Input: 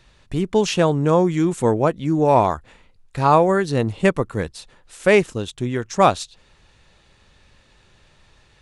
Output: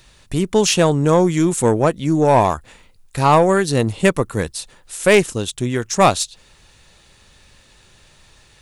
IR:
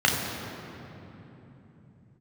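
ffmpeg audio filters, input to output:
-af "aeval=exprs='(tanh(2*val(0)+0.2)-tanh(0.2))/2':c=same,aemphasis=mode=production:type=50fm,volume=1.5"

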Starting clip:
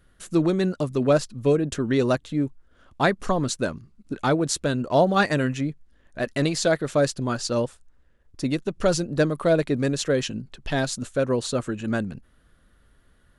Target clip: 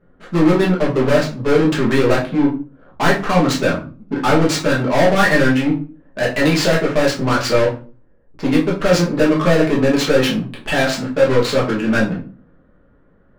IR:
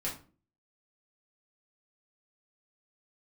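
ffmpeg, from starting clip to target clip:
-filter_complex "[0:a]adynamicsmooth=sensitivity=7:basefreq=560,asplit=2[s0][s1];[s1]highpass=f=720:p=1,volume=20,asoftclip=type=tanh:threshold=0.398[s2];[s0][s2]amix=inputs=2:normalize=0,lowpass=f=5300:p=1,volume=0.501[s3];[1:a]atrim=start_sample=2205[s4];[s3][s4]afir=irnorm=-1:irlink=0,volume=0.75"

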